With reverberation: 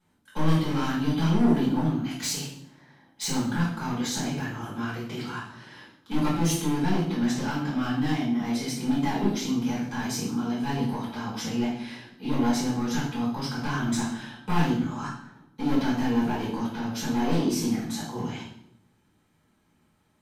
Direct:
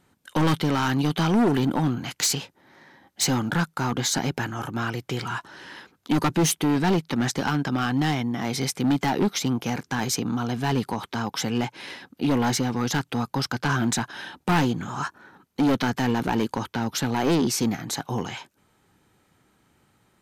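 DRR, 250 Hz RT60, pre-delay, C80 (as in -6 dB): -8.5 dB, 1.0 s, 5 ms, 7.5 dB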